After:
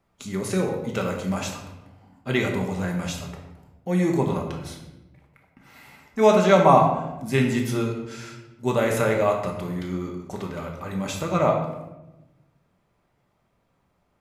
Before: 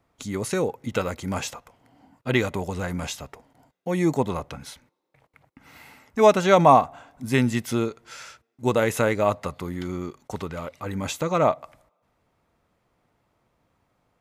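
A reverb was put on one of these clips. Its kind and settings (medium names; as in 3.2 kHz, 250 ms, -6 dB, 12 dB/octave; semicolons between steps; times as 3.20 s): simulated room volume 410 m³, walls mixed, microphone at 1.2 m; trim -3 dB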